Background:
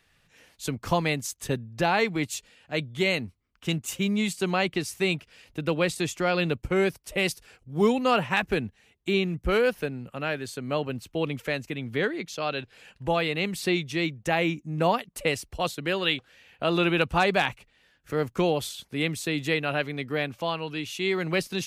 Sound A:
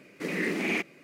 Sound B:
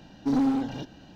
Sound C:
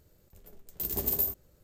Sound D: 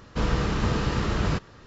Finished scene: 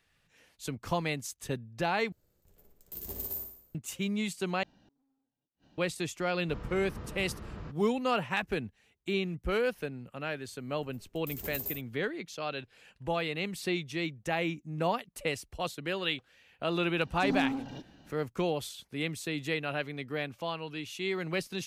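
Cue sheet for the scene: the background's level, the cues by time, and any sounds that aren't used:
background -6.5 dB
2.12 s: replace with C -9.5 dB + flutter echo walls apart 9.8 m, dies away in 0.59 s
4.63 s: replace with B -14 dB + inverted gate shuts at -38 dBFS, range -41 dB
6.33 s: add D -17.5 dB + low-pass 1.8 kHz 6 dB/octave
10.47 s: add C -9 dB
16.97 s: add B -7.5 dB
not used: A

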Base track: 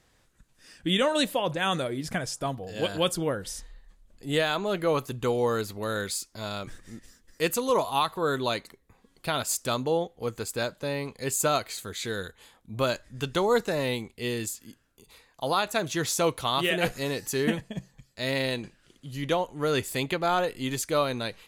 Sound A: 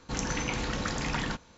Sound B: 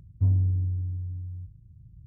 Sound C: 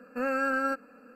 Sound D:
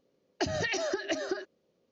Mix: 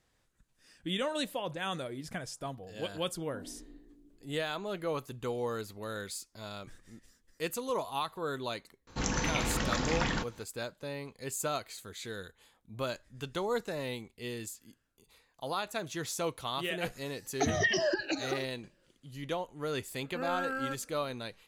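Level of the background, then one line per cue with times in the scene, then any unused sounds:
base track -9 dB
3.12 s: add B -1 dB + steep high-pass 260 Hz
8.87 s: add A
17.00 s: add D -3.5 dB + drifting ripple filter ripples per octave 1.3, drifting -1.1 Hz, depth 20 dB
19.99 s: add C -7.5 dB

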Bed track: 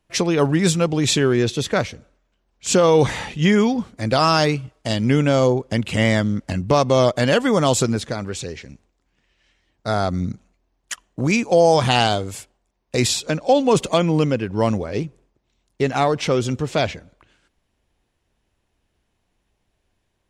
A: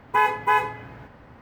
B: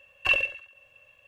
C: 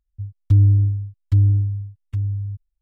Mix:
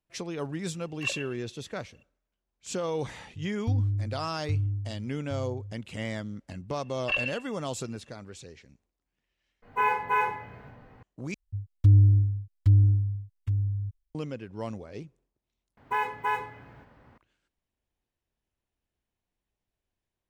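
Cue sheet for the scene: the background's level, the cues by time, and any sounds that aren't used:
bed track -16.5 dB
0.76 s: add B -6.5 dB + cancelling through-zero flanger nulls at 1.9 Hz, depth 2.8 ms
3.17 s: add C -13 dB
6.83 s: add B -5.5 dB + low-pass 5.5 kHz
9.62 s: replace with A -17.5 dB + simulated room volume 40 m³, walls mixed, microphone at 2 m
11.34 s: replace with C -4 dB
15.77 s: replace with A -8.5 dB

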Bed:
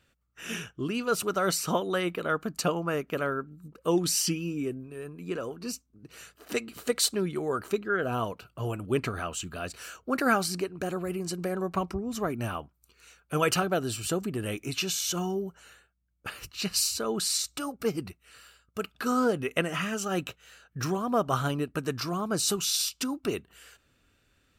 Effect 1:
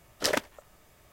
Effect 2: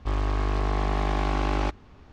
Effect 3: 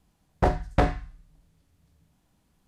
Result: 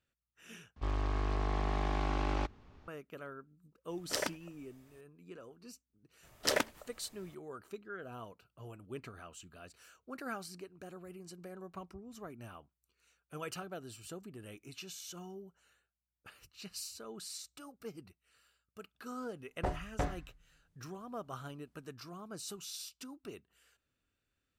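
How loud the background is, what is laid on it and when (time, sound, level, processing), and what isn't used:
bed -17 dB
0.76 s: replace with 2 -8 dB
3.89 s: add 1 -8.5 dB
6.23 s: add 1 -3.5 dB
19.21 s: add 3 -13 dB

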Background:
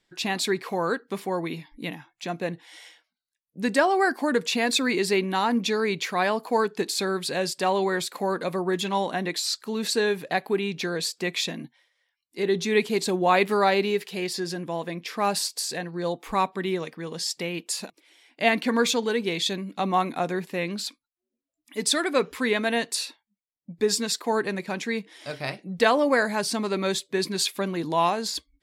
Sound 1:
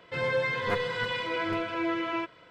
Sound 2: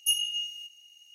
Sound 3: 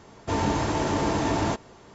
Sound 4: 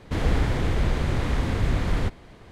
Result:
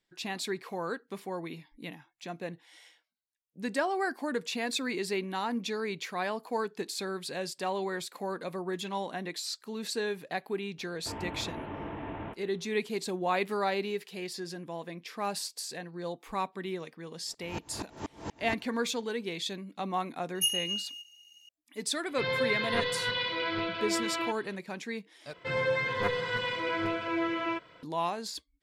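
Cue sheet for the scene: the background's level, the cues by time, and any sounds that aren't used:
background -9 dB
10.78 s: add 3 -13.5 dB + CVSD coder 16 kbps
17.11 s: add 3 -8 dB + sawtooth tremolo in dB swelling 4.2 Hz, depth 37 dB
20.35 s: add 2 -2 dB
22.06 s: add 1 -3 dB + resonant low-pass 4.1 kHz, resonance Q 3.3
25.33 s: replace with 1 -1 dB
not used: 4

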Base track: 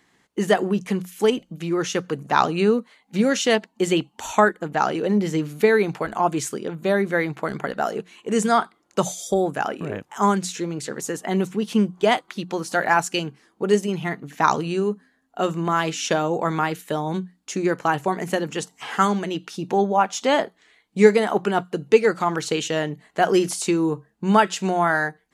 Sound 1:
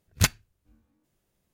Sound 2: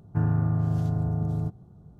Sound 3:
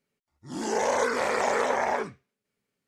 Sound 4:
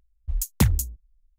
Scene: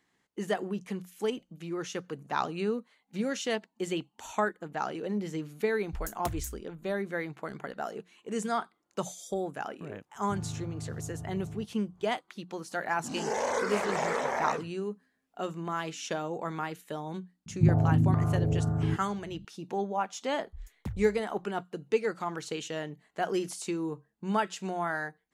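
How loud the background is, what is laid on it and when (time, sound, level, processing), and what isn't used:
base track -12 dB
5.65 s: add 4 -7.5 dB + compression, threshold -25 dBFS
10.15 s: add 2 -14 dB
12.55 s: add 3 -5 dB + warped record 78 rpm, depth 250 cents
17.46 s: add 2 -1.5 dB + step-sequenced low-pass 4.4 Hz 200–1600 Hz
20.25 s: add 4 -17.5 dB + low-pass 1.4 kHz 6 dB/octave
not used: 1

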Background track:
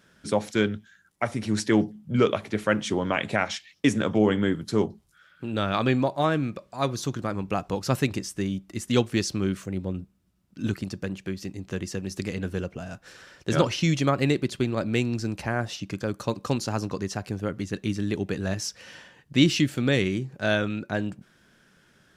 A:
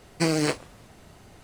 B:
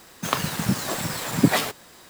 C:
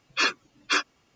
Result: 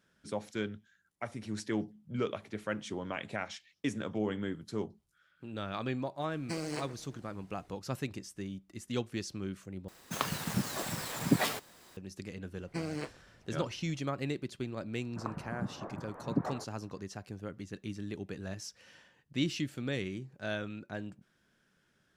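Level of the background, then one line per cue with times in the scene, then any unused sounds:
background track -12.5 dB
6.29 s: add A -14 dB + echo whose repeats swap between lows and highs 124 ms, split 2.1 kHz, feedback 58%, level -13 dB
9.88 s: replace with B -9 dB
12.54 s: add A -14.5 dB + tone controls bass +3 dB, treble -7 dB
14.93 s: add B -13.5 dB + low-pass 1.3 kHz 24 dB/octave
not used: C

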